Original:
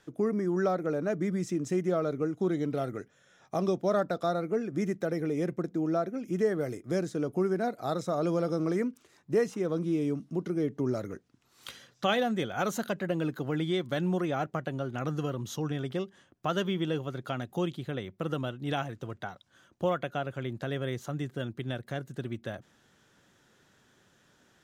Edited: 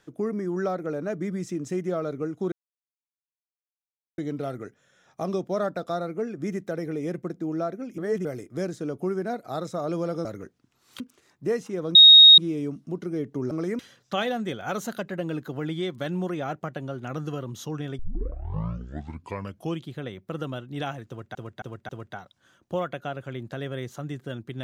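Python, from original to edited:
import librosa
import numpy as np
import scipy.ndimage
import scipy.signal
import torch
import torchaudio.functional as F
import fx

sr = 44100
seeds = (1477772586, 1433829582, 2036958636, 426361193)

y = fx.edit(x, sr, fx.insert_silence(at_s=2.52, length_s=1.66),
    fx.reverse_span(start_s=6.32, length_s=0.27),
    fx.swap(start_s=8.59, length_s=0.28, other_s=10.95, other_length_s=0.75),
    fx.insert_tone(at_s=9.82, length_s=0.43, hz=3750.0, db=-7.0),
    fx.tape_start(start_s=15.9, length_s=1.84),
    fx.repeat(start_s=18.99, length_s=0.27, count=4), tone=tone)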